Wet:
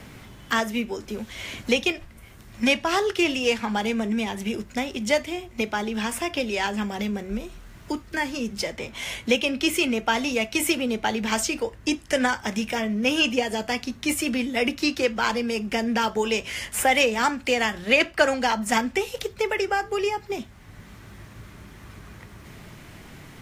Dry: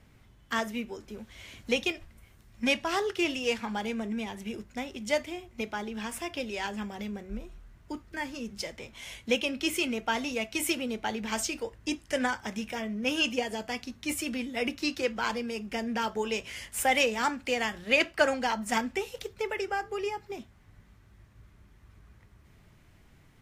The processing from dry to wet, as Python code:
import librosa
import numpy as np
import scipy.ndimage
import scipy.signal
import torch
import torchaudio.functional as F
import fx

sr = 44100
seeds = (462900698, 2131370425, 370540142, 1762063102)

y = fx.band_squash(x, sr, depth_pct=40)
y = F.gain(torch.from_numpy(y), 7.0).numpy()